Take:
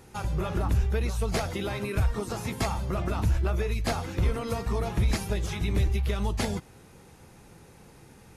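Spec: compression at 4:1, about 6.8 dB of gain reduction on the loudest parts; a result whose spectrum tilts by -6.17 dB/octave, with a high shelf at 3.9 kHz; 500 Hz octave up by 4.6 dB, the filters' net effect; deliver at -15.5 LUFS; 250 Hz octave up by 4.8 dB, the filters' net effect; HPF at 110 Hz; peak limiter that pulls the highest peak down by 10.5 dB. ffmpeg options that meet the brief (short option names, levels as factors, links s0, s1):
-af "highpass=110,equalizer=f=250:t=o:g=6,equalizer=f=500:t=o:g=4,highshelf=f=3900:g=-3.5,acompressor=threshold=0.0316:ratio=4,volume=14.1,alimiter=limit=0.473:level=0:latency=1"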